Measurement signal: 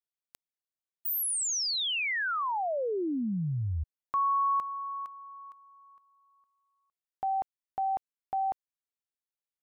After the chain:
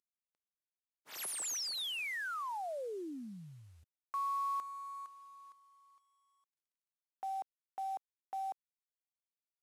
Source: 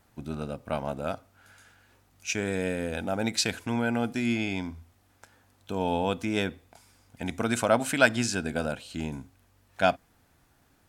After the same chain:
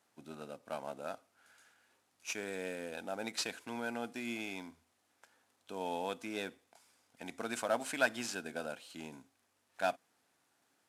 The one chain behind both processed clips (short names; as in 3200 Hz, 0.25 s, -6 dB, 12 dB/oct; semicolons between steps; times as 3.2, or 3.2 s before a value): CVSD 64 kbps; Bessel high-pass 340 Hz, order 2; gain -8.5 dB